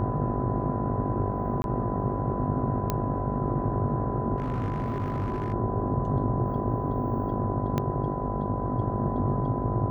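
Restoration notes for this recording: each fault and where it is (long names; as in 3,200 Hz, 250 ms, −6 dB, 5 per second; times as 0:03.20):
mains buzz 50 Hz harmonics 16 −32 dBFS
whistle 1,000 Hz −34 dBFS
0:01.62–0:01.64: drop-out 21 ms
0:02.90: click −12 dBFS
0:04.38–0:05.54: clipping −25 dBFS
0:07.78: click −14 dBFS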